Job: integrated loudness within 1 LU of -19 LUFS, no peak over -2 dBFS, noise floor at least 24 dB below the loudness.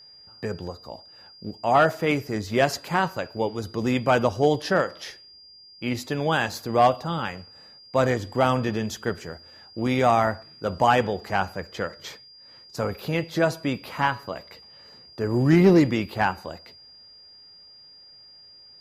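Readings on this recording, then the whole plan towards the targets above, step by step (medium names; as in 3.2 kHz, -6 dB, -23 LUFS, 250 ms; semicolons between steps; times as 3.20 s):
steady tone 4.8 kHz; tone level -47 dBFS; loudness -24.0 LUFS; peak level -7.5 dBFS; loudness target -19.0 LUFS
-> band-stop 4.8 kHz, Q 30; trim +5 dB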